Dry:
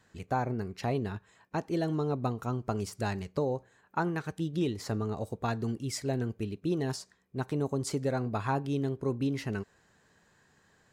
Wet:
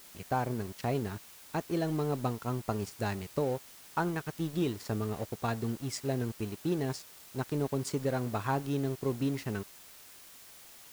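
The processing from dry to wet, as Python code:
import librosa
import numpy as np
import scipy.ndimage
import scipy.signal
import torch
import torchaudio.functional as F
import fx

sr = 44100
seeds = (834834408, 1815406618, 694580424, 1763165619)

y = np.sign(x) * np.maximum(np.abs(x) - 10.0 ** (-46.5 / 20.0), 0.0)
y = fx.dmg_noise_colour(y, sr, seeds[0], colour='white', level_db=-53.0)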